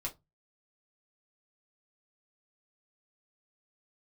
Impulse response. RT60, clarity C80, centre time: 0.20 s, 28.5 dB, 11 ms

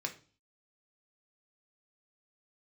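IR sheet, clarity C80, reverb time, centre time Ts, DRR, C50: 19.0 dB, 0.40 s, 9 ms, 3.5 dB, 13.0 dB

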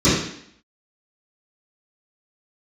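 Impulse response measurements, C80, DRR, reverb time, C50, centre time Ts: 5.0 dB, -17.0 dB, 0.65 s, 0.5 dB, 59 ms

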